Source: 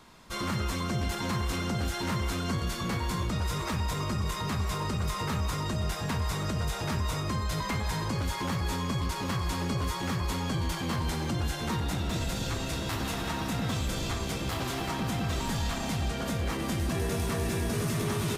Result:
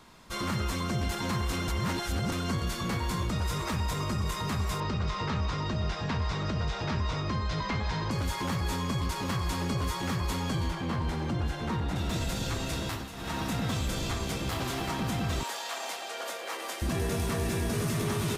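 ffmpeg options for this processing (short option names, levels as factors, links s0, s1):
-filter_complex "[0:a]asettb=1/sr,asplit=3[s0][s1][s2];[s0]atrim=end=4.804[s3];[s1]atrim=start=4.8:end=8.11,asetpts=PTS-STARTPTS,afade=t=in:d=0.004:c=qsin,afade=t=out:st=3.306:d=0.004:c=qsin,lowpass=f=5400:w=0.5412,lowpass=f=5400:w=1.3066[s4];[s2]atrim=start=8.106[s5];[s3][s4]acrossfade=d=0.004:c1=hsin:c2=qsin[s6];[s6][s5]acrossfade=d=0.004:c1=qsin:c2=hsin,asettb=1/sr,asplit=3[s7][s8][s9];[s7]atrim=end=10.694[s10];[s8]atrim=start=10.69:end=11.96,asetpts=PTS-STARTPTS,afade=t=in:d=0.004:c=qsin,afade=t=out:st=1.266:d=0.004:c=qsin,lowpass=f=2200:p=1[s11];[s9]atrim=start=11.956[s12];[s10][s11]acrossfade=d=0.004:c1=hsin:c2=qsin[s13];[s13][s12]acrossfade=d=0.004:c1=qsin:c2=hsin,asettb=1/sr,asplit=3[s14][s15][s16];[s14]atrim=end=15.434[s17];[s15]atrim=start=15.43:end=16.82,asetpts=PTS-STARTPTS,afade=t=in:d=0.004:c=qsin,afade=t=out:st=1.386:d=0.004:c=qsin,highpass=f=470:w=0.5412,highpass=f=470:w=1.3066[s18];[s16]atrim=start=16.816[s19];[s17][s18]acrossfade=d=0.004:c1=hsin:c2=qsin[s20];[s20][s19]acrossfade=d=0.004:c1=qsin:c2=hsin,asplit=5[s21][s22][s23][s24][s25];[s21]atrim=end=1.682[s26];[s22]atrim=start=1.678:end=2.322,asetpts=PTS-STARTPTS,areverse[s27];[s23]atrim=start=2.318:end=13.1,asetpts=PTS-STARTPTS,afade=t=out:st=10.532:d=0.25:silence=0.266073[s28];[s24]atrim=start=13.1:end=13.12,asetpts=PTS-STARTPTS,volume=0.266[s29];[s25]atrim=start=13.12,asetpts=PTS-STARTPTS,afade=t=in:d=0.25:silence=0.266073[s30];[s26][s27]acrossfade=d=0.004:c1=hsin:c2=hsin[s31];[s28][s29][s30]concat=n=3:v=0:a=1[s32];[s31][s32]acrossfade=d=0.004:c1=hsin:c2=hsin"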